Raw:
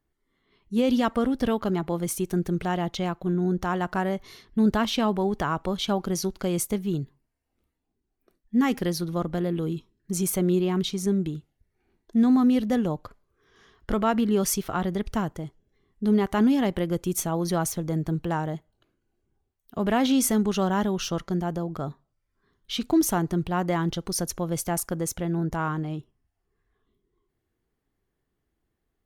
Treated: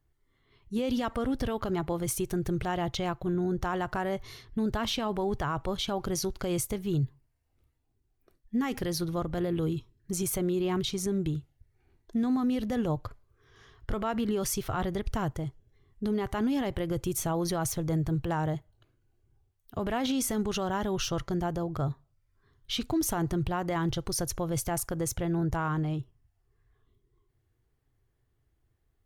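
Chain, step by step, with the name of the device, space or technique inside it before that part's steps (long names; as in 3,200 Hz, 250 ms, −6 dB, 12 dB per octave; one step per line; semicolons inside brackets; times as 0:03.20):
car stereo with a boomy subwoofer (low shelf with overshoot 150 Hz +6 dB, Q 3; brickwall limiter −21.5 dBFS, peak gain reduction 8 dB)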